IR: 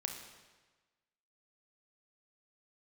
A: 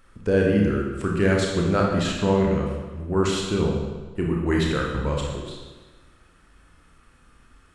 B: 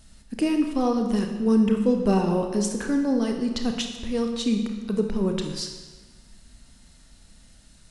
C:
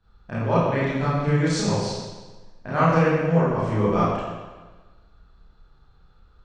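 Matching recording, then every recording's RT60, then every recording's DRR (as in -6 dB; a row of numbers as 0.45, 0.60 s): B; 1.3, 1.3, 1.3 s; -1.5, 3.5, -11.0 dB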